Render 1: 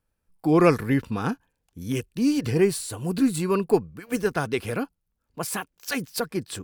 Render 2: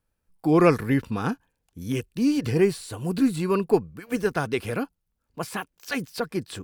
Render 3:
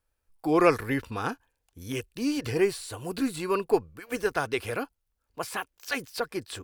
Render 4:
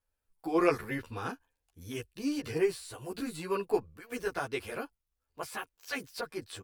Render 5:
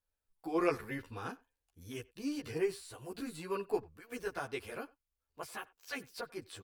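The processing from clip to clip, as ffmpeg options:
-filter_complex "[0:a]acrossover=split=4600[s0][s1];[s1]acompressor=threshold=0.01:ratio=4:attack=1:release=60[s2];[s0][s2]amix=inputs=2:normalize=0"
-af "equalizer=f=180:t=o:w=1.3:g=-12.5"
-filter_complex "[0:a]asplit=2[s0][s1];[s1]adelay=11.4,afreqshift=1.3[s2];[s0][s2]amix=inputs=2:normalize=1,volume=0.708"
-filter_complex "[0:a]asplit=2[s0][s1];[s1]adelay=90,highpass=300,lowpass=3400,asoftclip=type=hard:threshold=0.1,volume=0.0708[s2];[s0][s2]amix=inputs=2:normalize=0,volume=0.562"

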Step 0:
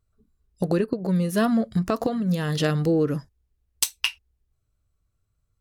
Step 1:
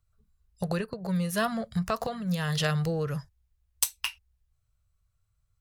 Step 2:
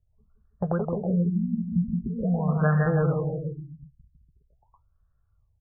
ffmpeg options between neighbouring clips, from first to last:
-filter_complex "[0:a]acrossover=split=190|1600|7700[s0][s1][s2][s3];[s1]highpass=690[s4];[s2]alimiter=limit=0.15:level=0:latency=1:release=240[s5];[s0][s4][s5][s3]amix=inputs=4:normalize=0"
-af "aecho=1:1:170|323|460.7|584.6|696.2:0.631|0.398|0.251|0.158|0.1,afftfilt=real='re*lt(b*sr/1024,240*pow(1900/240,0.5+0.5*sin(2*PI*0.44*pts/sr)))':imag='im*lt(b*sr/1024,240*pow(1900/240,0.5+0.5*sin(2*PI*0.44*pts/sr)))':win_size=1024:overlap=0.75,volume=1.5"

